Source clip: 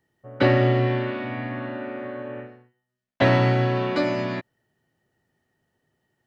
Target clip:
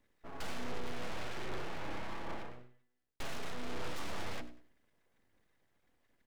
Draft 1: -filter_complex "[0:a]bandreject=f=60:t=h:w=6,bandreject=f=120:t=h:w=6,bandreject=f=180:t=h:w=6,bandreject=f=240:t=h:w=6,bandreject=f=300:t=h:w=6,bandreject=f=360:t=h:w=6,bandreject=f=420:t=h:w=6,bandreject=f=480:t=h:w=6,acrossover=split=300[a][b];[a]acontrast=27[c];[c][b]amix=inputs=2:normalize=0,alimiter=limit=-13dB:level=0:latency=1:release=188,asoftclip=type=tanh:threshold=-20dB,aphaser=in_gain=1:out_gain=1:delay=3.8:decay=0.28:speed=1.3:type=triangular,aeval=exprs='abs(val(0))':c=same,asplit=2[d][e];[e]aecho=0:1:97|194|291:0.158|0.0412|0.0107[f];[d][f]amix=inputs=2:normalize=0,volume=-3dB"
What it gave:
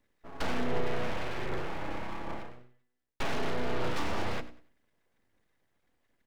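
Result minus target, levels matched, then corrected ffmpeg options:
soft clip: distortion -8 dB
-filter_complex "[0:a]bandreject=f=60:t=h:w=6,bandreject=f=120:t=h:w=6,bandreject=f=180:t=h:w=6,bandreject=f=240:t=h:w=6,bandreject=f=300:t=h:w=6,bandreject=f=360:t=h:w=6,bandreject=f=420:t=h:w=6,bandreject=f=480:t=h:w=6,acrossover=split=300[a][b];[a]acontrast=27[c];[c][b]amix=inputs=2:normalize=0,alimiter=limit=-13dB:level=0:latency=1:release=188,asoftclip=type=tanh:threshold=-31dB,aphaser=in_gain=1:out_gain=1:delay=3.8:decay=0.28:speed=1.3:type=triangular,aeval=exprs='abs(val(0))':c=same,asplit=2[d][e];[e]aecho=0:1:97|194|291:0.158|0.0412|0.0107[f];[d][f]amix=inputs=2:normalize=0,volume=-3dB"

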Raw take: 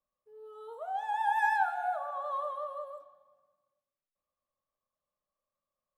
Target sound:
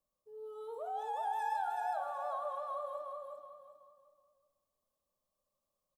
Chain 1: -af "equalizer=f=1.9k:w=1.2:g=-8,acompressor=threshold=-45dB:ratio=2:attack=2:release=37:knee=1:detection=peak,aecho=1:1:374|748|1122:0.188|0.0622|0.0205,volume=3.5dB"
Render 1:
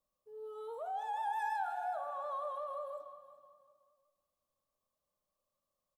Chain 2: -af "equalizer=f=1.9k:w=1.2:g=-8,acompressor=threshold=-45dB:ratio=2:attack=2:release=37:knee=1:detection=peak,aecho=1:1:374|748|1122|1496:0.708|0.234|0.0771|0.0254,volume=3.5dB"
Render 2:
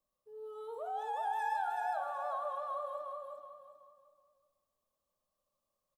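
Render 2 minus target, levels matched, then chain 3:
2000 Hz band +3.0 dB
-af "equalizer=f=1.9k:w=1.2:g=-14,acompressor=threshold=-45dB:ratio=2:attack=2:release=37:knee=1:detection=peak,aecho=1:1:374|748|1122|1496:0.708|0.234|0.0771|0.0254,volume=3.5dB"

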